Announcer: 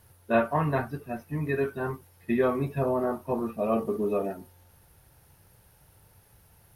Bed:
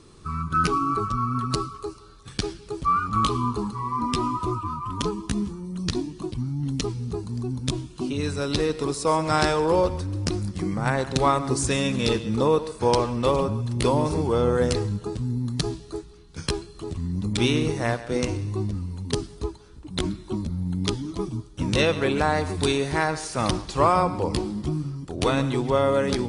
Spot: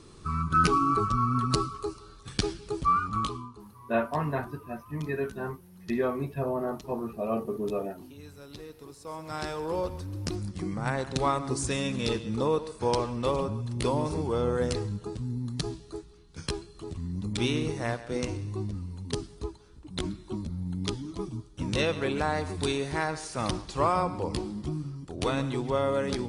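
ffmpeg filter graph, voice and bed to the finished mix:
ffmpeg -i stem1.wav -i stem2.wav -filter_complex "[0:a]adelay=3600,volume=-3.5dB[link_01];[1:a]volume=14dB,afade=type=out:start_time=2.77:duration=0.72:silence=0.1,afade=type=in:start_time=9:duration=1.41:silence=0.188365[link_02];[link_01][link_02]amix=inputs=2:normalize=0" out.wav

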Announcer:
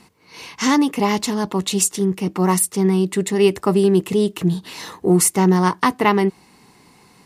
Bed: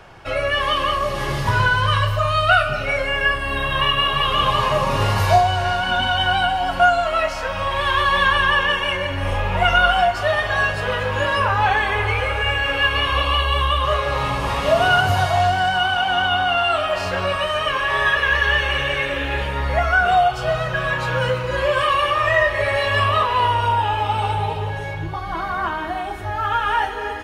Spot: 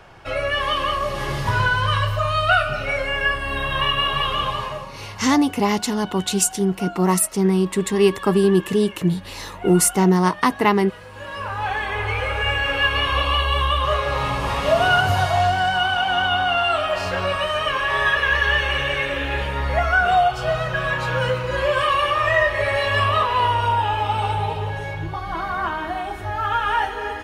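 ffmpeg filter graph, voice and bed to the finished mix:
ffmpeg -i stem1.wav -i stem2.wav -filter_complex "[0:a]adelay=4600,volume=-1dB[link_01];[1:a]volume=15.5dB,afade=type=out:start_time=4.18:duration=0.74:silence=0.149624,afade=type=in:start_time=11.11:duration=1.37:silence=0.133352[link_02];[link_01][link_02]amix=inputs=2:normalize=0" out.wav

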